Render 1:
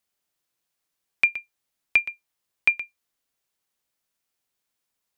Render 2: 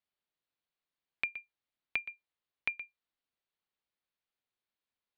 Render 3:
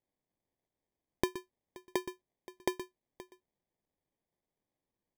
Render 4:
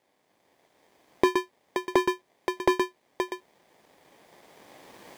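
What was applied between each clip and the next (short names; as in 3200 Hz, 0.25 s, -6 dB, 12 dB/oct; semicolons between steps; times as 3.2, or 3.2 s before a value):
steep low-pass 4500 Hz 48 dB/oct; compressor, threshold -22 dBFS, peak gain reduction 8 dB; gain -8.5 dB
outdoor echo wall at 90 m, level -15 dB; sample-and-hold 32×; gain +2 dB
recorder AGC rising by 9.8 dB/s; overdrive pedal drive 36 dB, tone 2500 Hz, clips at -2 dBFS; gain -5.5 dB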